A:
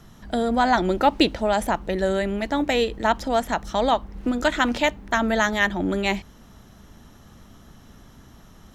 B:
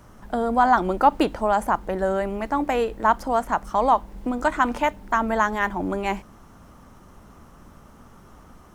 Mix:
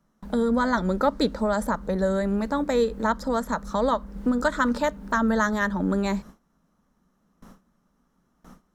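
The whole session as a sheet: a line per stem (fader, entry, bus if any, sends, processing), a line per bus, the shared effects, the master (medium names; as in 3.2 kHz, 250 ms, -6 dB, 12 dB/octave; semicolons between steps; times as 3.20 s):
-0.5 dB, 0.00 s, no send, treble shelf 9.4 kHz -6.5 dB; static phaser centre 530 Hz, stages 8
-2.0 dB, 0.00 s, no send, compression, threshold -28 dBFS, peak gain reduction 16 dB; resonant low shelf 120 Hz -12.5 dB, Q 3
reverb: none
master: gate with hold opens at -35 dBFS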